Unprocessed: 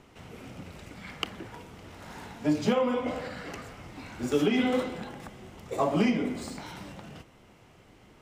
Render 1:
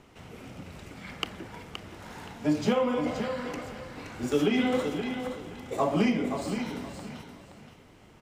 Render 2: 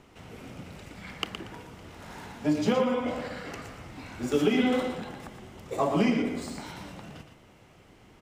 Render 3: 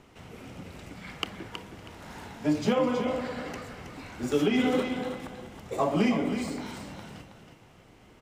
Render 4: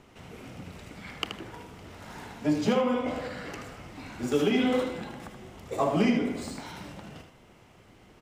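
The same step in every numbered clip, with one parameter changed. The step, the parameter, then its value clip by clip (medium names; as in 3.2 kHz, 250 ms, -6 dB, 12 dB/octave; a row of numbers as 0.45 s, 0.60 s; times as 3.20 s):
feedback delay, time: 522 ms, 117 ms, 321 ms, 78 ms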